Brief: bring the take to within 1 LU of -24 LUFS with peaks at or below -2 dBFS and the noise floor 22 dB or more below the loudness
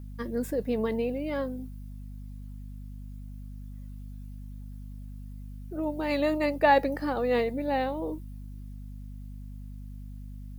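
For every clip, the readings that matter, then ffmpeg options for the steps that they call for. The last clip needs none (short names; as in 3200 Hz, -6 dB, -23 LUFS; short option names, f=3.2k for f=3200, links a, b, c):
hum 50 Hz; harmonics up to 250 Hz; hum level -38 dBFS; loudness -28.5 LUFS; peak -10.5 dBFS; loudness target -24.0 LUFS
-> -af "bandreject=f=50:t=h:w=6,bandreject=f=100:t=h:w=6,bandreject=f=150:t=h:w=6,bandreject=f=200:t=h:w=6,bandreject=f=250:t=h:w=6"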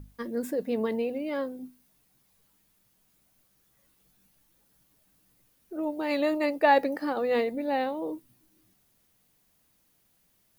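hum none; loudness -28.5 LUFS; peak -10.5 dBFS; loudness target -24.0 LUFS
-> -af "volume=4.5dB"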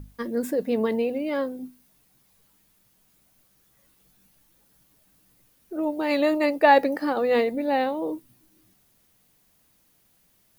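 loudness -24.0 LUFS; peak -6.0 dBFS; noise floor -64 dBFS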